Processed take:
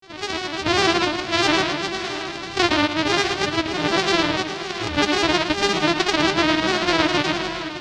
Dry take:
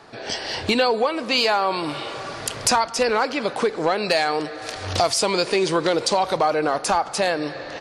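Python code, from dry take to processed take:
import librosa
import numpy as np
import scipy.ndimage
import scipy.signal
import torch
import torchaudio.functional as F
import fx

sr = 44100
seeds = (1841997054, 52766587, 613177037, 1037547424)

y = np.r_[np.sort(x[:len(x) // 128 * 128].reshape(-1, 128), axis=1).ravel(), x[len(x) // 128 * 128:]]
y = scipy.signal.sosfilt(scipy.signal.butter(4, 4700.0, 'lowpass', fs=sr, output='sos'), y)
y = fx.granulator(y, sr, seeds[0], grain_ms=100.0, per_s=20.0, spray_ms=100.0, spread_st=3)
y = fx.high_shelf(y, sr, hz=2700.0, db=11.5)
y = fx.echo_multitap(y, sr, ms=(113, 618, 668), db=(-9.0, -16.0, -13.5))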